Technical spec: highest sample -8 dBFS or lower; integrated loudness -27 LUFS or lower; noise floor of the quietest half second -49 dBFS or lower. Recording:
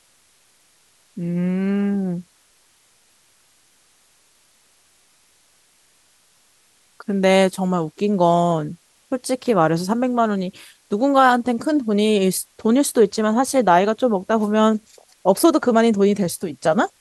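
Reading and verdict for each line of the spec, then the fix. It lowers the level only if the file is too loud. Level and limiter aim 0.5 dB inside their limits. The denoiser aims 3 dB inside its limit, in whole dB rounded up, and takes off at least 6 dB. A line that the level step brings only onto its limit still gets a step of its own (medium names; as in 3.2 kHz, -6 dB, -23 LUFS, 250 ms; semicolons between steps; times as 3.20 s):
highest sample -2.0 dBFS: fail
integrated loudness -19.0 LUFS: fail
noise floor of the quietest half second -58 dBFS: pass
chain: trim -8.5 dB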